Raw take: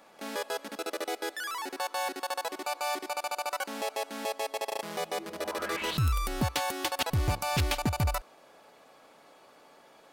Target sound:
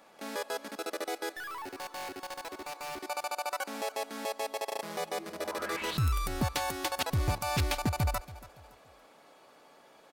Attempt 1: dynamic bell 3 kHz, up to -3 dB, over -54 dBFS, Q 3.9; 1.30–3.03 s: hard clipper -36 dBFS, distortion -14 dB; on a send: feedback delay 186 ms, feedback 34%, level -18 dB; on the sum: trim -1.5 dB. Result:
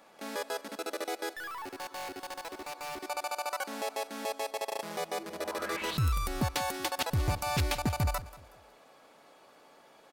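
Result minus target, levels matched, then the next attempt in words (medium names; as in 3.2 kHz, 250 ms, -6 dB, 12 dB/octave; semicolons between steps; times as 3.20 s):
echo 97 ms early
dynamic bell 3 kHz, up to -3 dB, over -54 dBFS, Q 3.9; 1.30–3.03 s: hard clipper -36 dBFS, distortion -14 dB; on a send: feedback delay 283 ms, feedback 34%, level -18 dB; on the sum: trim -1.5 dB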